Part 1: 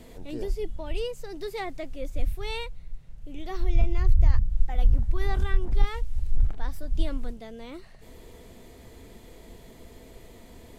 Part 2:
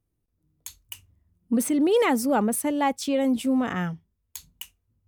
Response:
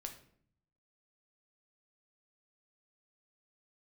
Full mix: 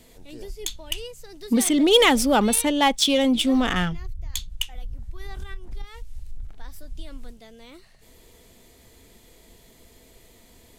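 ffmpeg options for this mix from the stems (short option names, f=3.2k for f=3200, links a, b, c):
-filter_complex "[0:a]acompressor=threshold=-22dB:ratio=6,volume=-6.5dB[a];[1:a]equalizer=f=3.4k:w=4:g=11.5,adynamicsmooth=sensitivity=6.5:basefreq=4.6k,volume=2.5dB[b];[a][b]amix=inputs=2:normalize=0,highshelf=f=2.3k:g=10.5"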